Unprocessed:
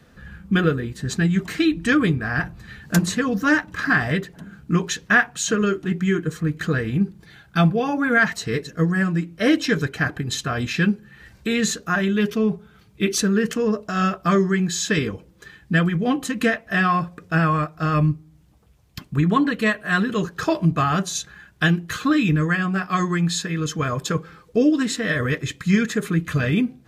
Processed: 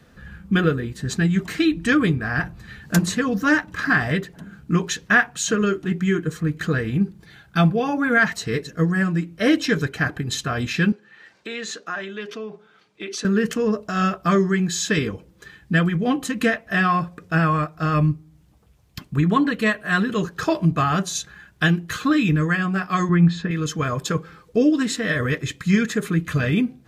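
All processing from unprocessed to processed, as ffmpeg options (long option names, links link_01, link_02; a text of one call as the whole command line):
ffmpeg -i in.wav -filter_complex "[0:a]asettb=1/sr,asplit=3[link_01][link_02][link_03];[link_01]atrim=end=10.924[link_04];[link_02]atrim=start=10.92:end=13.25,asetpts=PTS-STARTPTS,afade=type=in:duration=0.004:curve=qsin,afade=type=out:start_time=2.326:duration=0.004:curve=qsin,acompressor=threshold=-24dB:ratio=3:attack=3.2:release=140:knee=1:detection=peak,highpass=390,lowpass=5800[link_05];[link_03]atrim=start=13.246[link_06];[link_04][link_05]acrossfade=duration=0.004:curve1=hsin:curve2=qsin[link_07];[link_07][link_06]acrossfade=duration=0.004:curve1=qsin:curve2=hsin,asettb=1/sr,asplit=3[link_08][link_09][link_10];[link_08]atrim=end=23.094[link_11];[link_09]atrim=start=23.09:end=23.51,asetpts=PTS-STARTPTS,afade=type=in:duration=0.004:curve=qsin,afade=type=out:start_time=0.416:duration=0.004:curve=qsin,lowpass=2500,lowshelf=frequency=220:gain=10[link_12];[link_10]atrim=start=23.506[link_13];[link_11][link_12]acrossfade=duration=0.004:curve1=hsin:curve2=qsin[link_14];[link_14][link_13]acrossfade=duration=0.004:curve1=qsin:curve2=hsin" out.wav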